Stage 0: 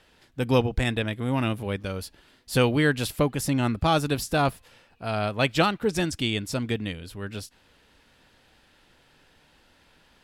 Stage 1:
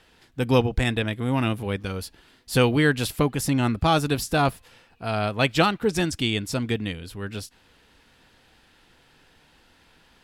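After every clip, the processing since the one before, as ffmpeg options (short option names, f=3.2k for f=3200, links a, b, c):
-af "bandreject=f=580:w=12,volume=2dB"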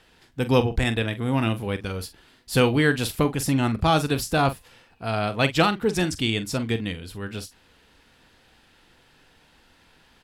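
-filter_complex "[0:a]asplit=2[a][b];[b]adelay=44,volume=-12dB[c];[a][c]amix=inputs=2:normalize=0"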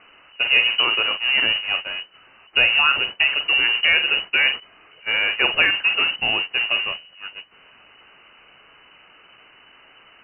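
-af "aeval=exprs='val(0)+0.5*0.0944*sgn(val(0))':c=same,agate=range=-22dB:threshold=-22dB:ratio=16:detection=peak,lowpass=f=2.6k:t=q:w=0.5098,lowpass=f=2.6k:t=q:w=0.6013,lowpass=f=2.6k:t=q:w=0.9,lowpass=f=2.6k:t=q:w=2.563,afreqshift=-3000"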